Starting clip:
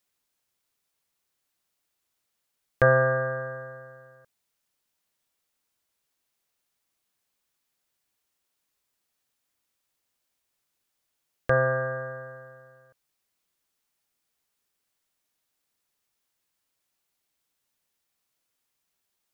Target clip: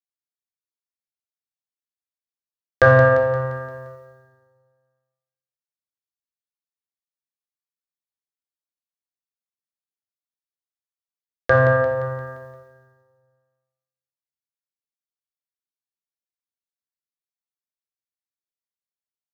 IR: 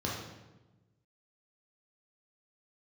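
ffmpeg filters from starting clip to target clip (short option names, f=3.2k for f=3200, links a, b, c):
-filter_complex "[0:a]agate=range=-33dB:threshold=-43dB:ratio=3:detection=peak,acontrast=25,aecho=1:1:174|348|522|696|870|1044:0.335|0.174|0.0906|0.0471|0.0245|0.0127,asplit=2[a][b];[1:a]atrim=start_sample=2205,highshelf=f=2.4k:g=10.5[c];[b][c]afir=irnorm=-1:irlink=0,volume=-8dB[d];[a][d]amix=inputs=2:normalize=0,volume=-1dB"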